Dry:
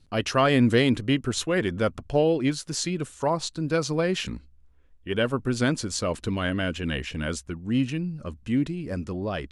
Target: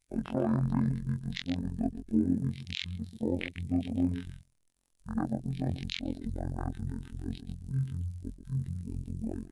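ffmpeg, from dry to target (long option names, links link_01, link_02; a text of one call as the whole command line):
ffmpeg -i in.wav -filter_complex "[0:a]superequalizer=7b=2:11b=0.631:12b=0.398:16b=0.447,acrusher=bits=8:mix=0:aa=0.000001,crystalizer=i=1.5:c=0,asplit=2[link_01][link_02];[link_02]aecho=0:1:135:0.282[link_03];[link_01][link_03]amix=inputs=2:normalize=0,afftfilt=real='hypot(re,im)*cos(PI*b)':imag='0':win_size=2048:overlap=0.75,bandreject=frequency=50:width_type=h:width=6,bandreject=frequency=100:width_type=h:width=6,bandreject=frequency=150:width_type=h:width=6,bandreject=frequency=200:width_type=h:width=6,bandreject=frequency=250:width_type=h:width=6,bandreject=frequency=300:width_type=h:width=6,bandreject=frequency=350:width_type=h:width=6,asetrate=22696,aresample=44100,atempo=1.94306,highshelf=frequency=5800:gain=9.5,afwtdn=0.0355,alimiter=limit=-10.5dB:level=0:latency=1:release=270,volume=-4.5dB" out.wav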